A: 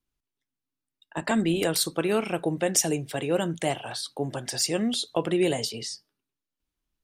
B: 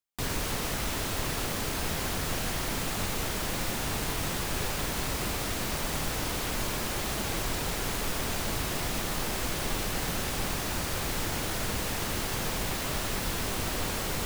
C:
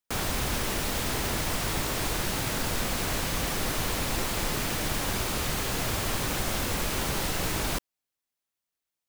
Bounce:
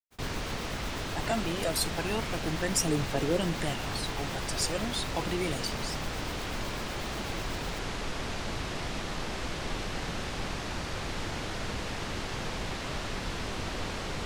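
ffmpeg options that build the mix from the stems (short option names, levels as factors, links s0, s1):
-filter_complex "[0:a]aphaser=in_gain=1:out_gain=1:delay=1.7:decay=0.59:speed=0.32:type=triangular,volume=0.447[s0];[1:a]lowpass=5300,volume=0.75[s1];[2:a]tremolo=f=8.1:d=0.67,volume=0.158[s2];[s0][s1][s2]amix=inputs=3:normalize=0,agate=range=0.0224:threshold=0.0112:ratio=3:detection=peak"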